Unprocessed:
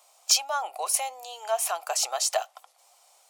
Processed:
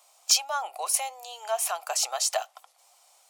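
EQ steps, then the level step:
high-pass filter 490 Hz 6 dB per octave
0.0 dB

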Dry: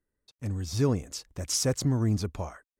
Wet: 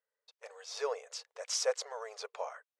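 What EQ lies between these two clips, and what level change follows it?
linear-phase brick-wall band-pass 430–13,000 Hz
high-frequency loss of the air 88 metres
0.0 dB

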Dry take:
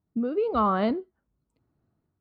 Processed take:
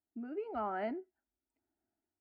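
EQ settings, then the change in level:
bass and treble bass −11 dB, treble −3 dB
phaser with its sweep stopped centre 750 Hz, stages 8
−7.0 dB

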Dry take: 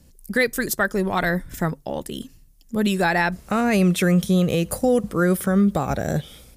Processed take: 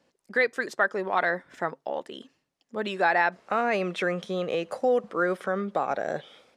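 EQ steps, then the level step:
high-pass filter 570 Hz 12 dB per octave
head-to-tape spacing loss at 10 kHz 28 dB
+2.5 dB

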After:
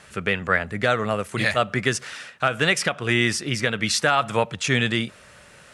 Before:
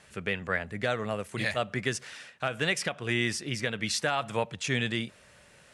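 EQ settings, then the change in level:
parametric band 1,300 Hz +5 dB 0.39 octaves
+7.5 dB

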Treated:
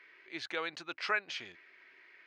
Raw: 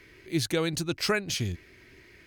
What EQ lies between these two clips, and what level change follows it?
high-pass filter 1,200 Hz 12 dB per octave
head-to-tape spacing loss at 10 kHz 41 dB
+6.5 dB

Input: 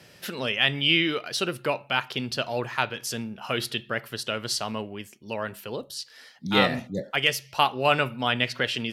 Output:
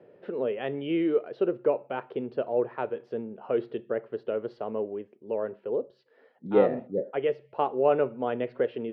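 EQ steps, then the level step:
resonant band-pass 440 Hz, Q 2.8
high-frequency loss of the air 370 metres
+8.5 dB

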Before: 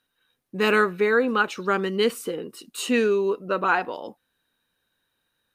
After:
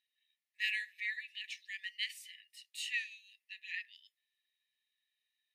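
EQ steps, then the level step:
linear-phase brick-wall high-pass 1,700 Hz
low-pass filter 2,800 Hz 6 dB per octave
−4.5 dB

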